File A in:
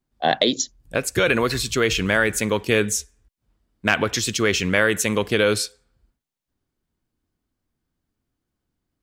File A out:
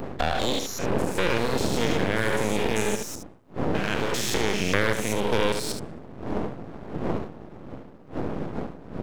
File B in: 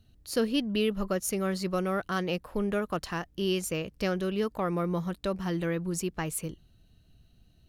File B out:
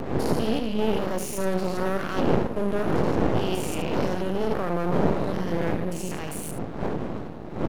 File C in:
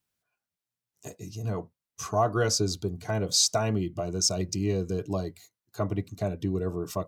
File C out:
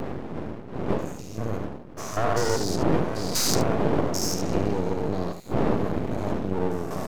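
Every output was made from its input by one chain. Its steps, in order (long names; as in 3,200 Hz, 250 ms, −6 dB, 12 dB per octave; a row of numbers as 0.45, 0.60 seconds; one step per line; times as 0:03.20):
spectrum averaged block by block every 200 ms
wind on the microphone 300 Hz −28 dBFS
single-tap delay 73 ms −8 dB
dynamic equaliser 480 Hz, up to +5 dB, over −37 dBFS, Q 2
downward compressor 3 to 1, threshold −24 dBFS
high-pass filter 120 Hz 12 dB per octave
half-wave rectification
upward compression, threshold −47 dBFS
loudness normalisation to −27 LKFS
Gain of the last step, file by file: +5.5, +8.5, +8.5 decibels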